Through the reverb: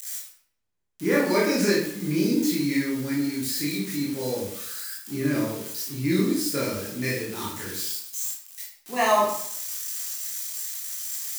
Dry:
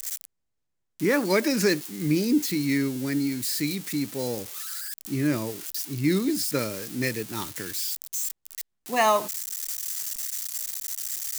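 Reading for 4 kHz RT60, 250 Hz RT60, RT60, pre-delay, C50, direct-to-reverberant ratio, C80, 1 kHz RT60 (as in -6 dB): 0.50 s, 0.65 s, 0.65 s, 16 ms, 2.5 dB, -5.5 dB, 6.5 dB, 0.65 s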